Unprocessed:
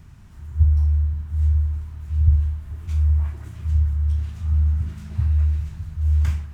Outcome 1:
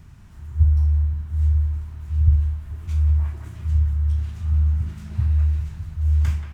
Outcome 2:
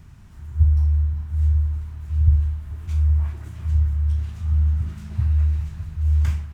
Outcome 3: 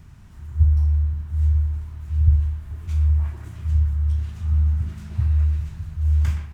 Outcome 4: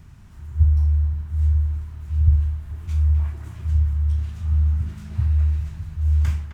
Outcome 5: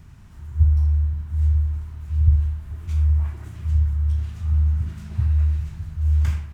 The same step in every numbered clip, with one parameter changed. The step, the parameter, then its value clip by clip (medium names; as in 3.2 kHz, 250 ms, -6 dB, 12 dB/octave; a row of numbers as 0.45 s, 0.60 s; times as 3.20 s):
speakerphone echo, time: 180 ms, 390 ms, 120 ms, 260 ms, 80 ms